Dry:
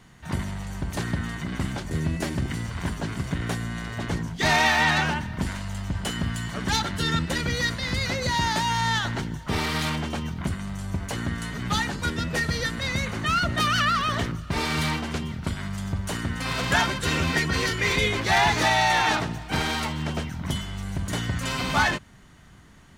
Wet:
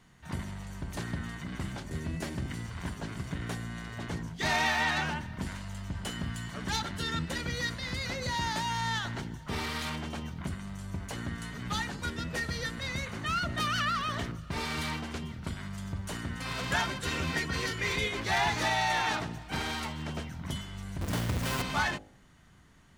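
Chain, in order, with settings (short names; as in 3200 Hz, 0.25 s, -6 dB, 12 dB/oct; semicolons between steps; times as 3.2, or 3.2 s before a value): 21.01–21.62 half-waves squared off; de-hum 52.32 Hz, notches 16; gain -7.5 dB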